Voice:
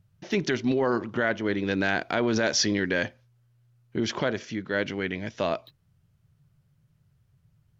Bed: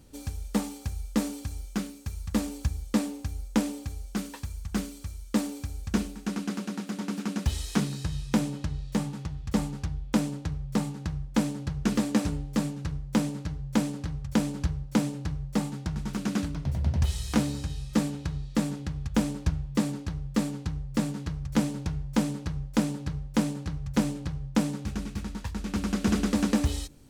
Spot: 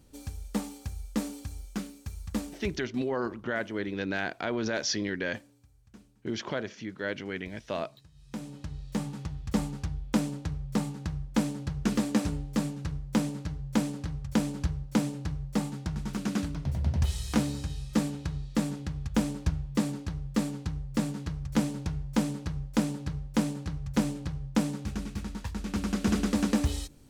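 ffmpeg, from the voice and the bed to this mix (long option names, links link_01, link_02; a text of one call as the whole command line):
ffmpeg -i stem1.wav -i stem2.wav -filter_complex "[0:a]adelay=2300,volume=-6dB[link_01];[1:a]volume=21dB,afade=type=out:start_time=2.29:duration=0.61:silence=0.0749894,afade=type=in:start_time=8.14:duration=1.08:silence=0.0562341[link_02];[link_01][link_02]amix=inputs=2:normalize=0" out.wav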